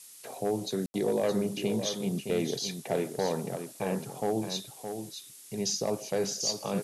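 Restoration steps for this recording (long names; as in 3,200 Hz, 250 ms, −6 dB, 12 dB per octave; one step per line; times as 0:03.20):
click removal
ambience match 0:00.86–0:00.94
noise reduction from a noise print 27 dB
echo removal 617 ms −8 dB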